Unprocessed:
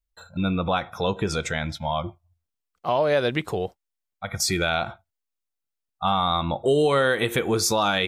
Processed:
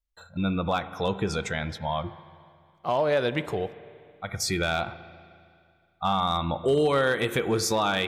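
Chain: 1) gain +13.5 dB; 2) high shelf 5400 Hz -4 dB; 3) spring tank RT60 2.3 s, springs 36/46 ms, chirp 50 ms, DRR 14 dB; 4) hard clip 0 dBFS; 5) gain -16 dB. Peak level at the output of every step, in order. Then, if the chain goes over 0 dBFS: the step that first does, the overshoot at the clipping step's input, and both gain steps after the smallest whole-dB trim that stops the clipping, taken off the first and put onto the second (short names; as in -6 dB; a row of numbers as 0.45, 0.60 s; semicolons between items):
+3.5, +3.0, +3.5, 0.0, -16.0 dBFS; step 1, 3.5 dB; step 1 +9.5 dB, step 5 -12 dB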